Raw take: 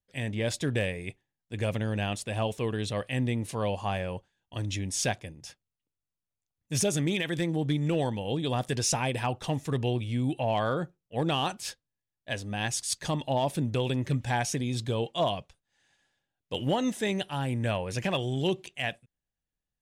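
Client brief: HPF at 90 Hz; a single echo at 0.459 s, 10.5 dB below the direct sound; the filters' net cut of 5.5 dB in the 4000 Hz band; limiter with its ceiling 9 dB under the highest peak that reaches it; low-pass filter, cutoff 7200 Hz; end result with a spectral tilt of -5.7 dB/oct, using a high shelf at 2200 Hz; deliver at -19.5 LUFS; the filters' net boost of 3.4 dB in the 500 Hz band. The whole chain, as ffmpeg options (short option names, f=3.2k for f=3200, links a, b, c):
-af "highpass=90,lowpass=7.2k,equalizer=f=500:t=o:g=4.5,highshelf=f=2.2k:g=-3,equalizer=f=4k:t=o:g=-4.5,alimiter=limit=-23dB:level=0:latency=1,aecho=1:1:459:0.299,volume=14dB"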